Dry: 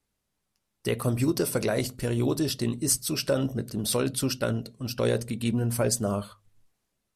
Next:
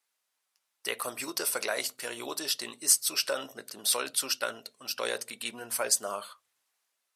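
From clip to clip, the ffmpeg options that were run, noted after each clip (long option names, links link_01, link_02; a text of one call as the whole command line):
ffmpeg -i in.wav -af "highpass=900,volume=2.5dB" out.wav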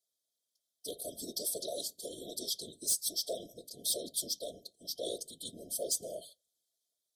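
ffmpeg -i in.wav -af "afftfilt=real='hypot(re,im)*cos(2*PI*random(0))':imag='hypot(re,im)*sin(2*PI*random(1))':win_size=512:overlap=0.75,asoftclip=type=hard:threshold=-27.5dB,afftfilt=real='re*(1-between(b*sr/4096,720,3100))':imag='im*(1-between(b*sr/4096,720,3100))':win_size=4096:overlap=0.75,volume=1.5dB" out.wav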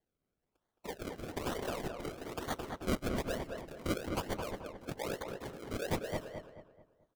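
ffmpeg -i in.wav -filter_complex "[0:a]acrusher=samples=34:mix=1:aa=0.000001:lfo=1:lforange=34:lforate=1.1,asplit=2[link_01][link_02];[link_02]adelay=217,lowpass=frequency=2100:poles=1,volume=-4dB,asplit=2[link_03][link_04];[link_04]adelay=217,lowpass=frequency=2100:poles=1,volume=0.39,asplit=2[link_05][link_06];[link_06]adelay=217,lowpass=frequency=2100:poles=1,volume=0.39,asplit=2[link_07][link_08];[link_08]adelay=217,lowpass=frequency=2100:poles=1,volume=0.39,asplit=2[link_09][link_10];[link_10]adelay=217,lowpass=frequency=2100:poles=1,volume=0.39[link_11];[link_03][link_05][link_07][link_09][link_11]amix=inputs=5:normalize=0[link_12];[link_01][link_12]amix=inputs=2:normalize=0,volume=-1dB" out.wav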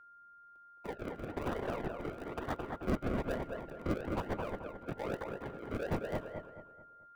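ffmpeg -i in.wav -filter_complex "[0:a]acrossover=split=240|2900[link_01][link_02][link_03];[link_02]asoftclip=type=hard:threshold=-31dB[link_04];[link_03]acrusher=samples=41:mix=1:aa=0.000001[link_05];[link_01][link_04][link_05]amix=inputs=3:normalize=0,aeval=exprs='val(0)+0.00158*sin(2*PI*1400*n/s)':channel_layout=same,volume=1dB" out.wav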